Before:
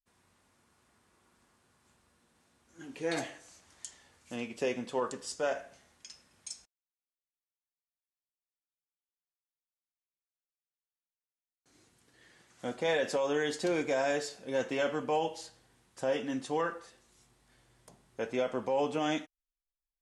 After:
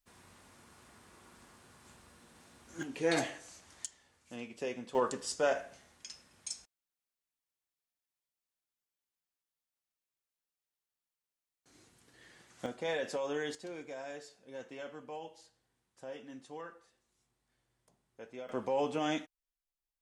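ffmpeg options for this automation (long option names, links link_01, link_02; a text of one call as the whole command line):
ffmpeg -i in.wav -af "asetnsamples=nb_out_samples=441:pad=0,asendcmd='2.83 volume volume 3dB;3.86 volume volume -6dB;4.95 volume volume 2dB;12.66 volume volume -5.5dB;13.55 volume volume -14dB;18.49 volume volume -2dB',volume=10dB" out.wav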